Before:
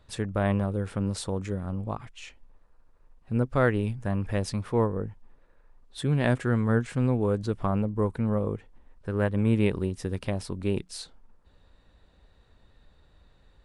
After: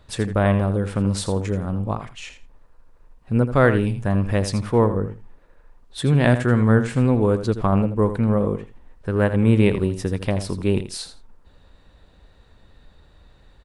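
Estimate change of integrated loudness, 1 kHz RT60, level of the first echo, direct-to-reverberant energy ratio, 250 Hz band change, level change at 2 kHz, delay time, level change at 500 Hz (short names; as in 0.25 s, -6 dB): +7.5 dB, none, -11.0 dB, none, +7.5 dB, +7.5 dB, 82 ms, +7.5 dB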